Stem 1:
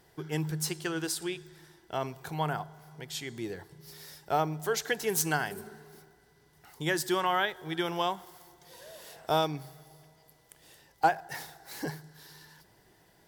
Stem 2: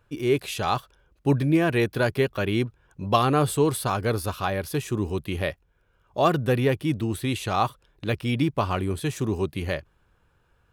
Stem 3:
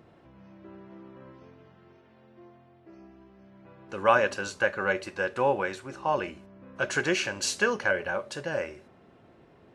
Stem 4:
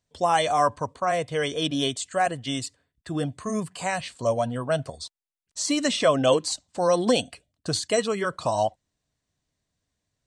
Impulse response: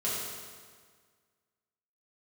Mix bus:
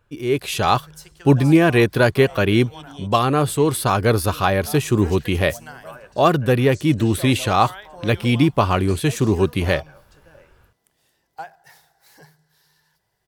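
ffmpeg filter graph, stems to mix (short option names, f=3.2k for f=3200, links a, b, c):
-filter_complex "[0:a]equalizer=f=280:t=o:w=0.84:g=-13,adelay=350,volume=-9dB[a];[1:a]dynaudnorm=f=280:g=3:m=11dB,volume=-0.5dB[b];[2:a]adelay=1800,volume=-19.5dB[c];[3:a]adelay=1150,volume=-16.5dB[d];[a][b][c][d]amix=inputs=4:normalize=0"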